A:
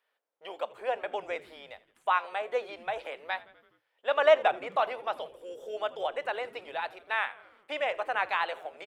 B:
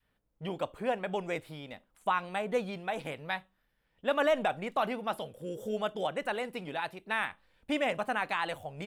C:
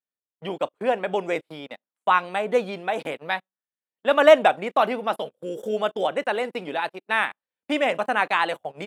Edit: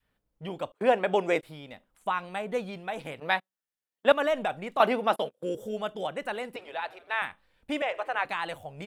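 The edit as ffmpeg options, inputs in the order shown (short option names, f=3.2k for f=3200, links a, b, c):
-filter_complex "[2:a]asplit=3[a][b][c];[0:a]asplit=2[d][e];[1:a]asplit=6[f][g][h][i][j][k];[f]atrim=end=0.722[l];[a]atrim=start=0.718:end=1.432[m];[g]atrim=start=1.428:end=3.202[n];[b]atrim=start=3.198:end=4.122[o];[h]atrim=start=4.118:end=4.802[p];[c]atrim=start=4.798:end=5.552[q];[i]atrim=start=5.548:end=6.562[r];[d]atrim=start=6.558:end=7.222[s];[j]atrim=start=7.218:end=7.822[t];[e]atrim=start=7.818:end=8.252[u];[k]atrim=start=8.248[v];[l][m]acrossfade=d=0.004:c1=hsin:c2=hsin[w];[w][n]acrossfade=d=0.004:c1=hsin:c2=hsin[x];[x][o]acrossfade=d=0.004:c1=hsin:c2=hsin[y];[y][p]acrossfade=d=0.004:c1=hsin:c2=hsin[z];[z][q]acrossfade=d=0.004:c1=hsin:c2=hsin[aa];[aa][r]acrossfade=d=0.004:c1=hsin:c2=hsin[ab];[ab][s]acrossfade=d=0.004:c1=hsin:c2=hsin[ac];[ac][t]acrossfade=d=0.004:c1=hsin:c2=hsin[ad];[ad][u]acrossfade=d=0.004:c1=hsin:c2=hsin[ae];[ae][v]acrossfade=d=0.004:c1=hsin:c2=hsin"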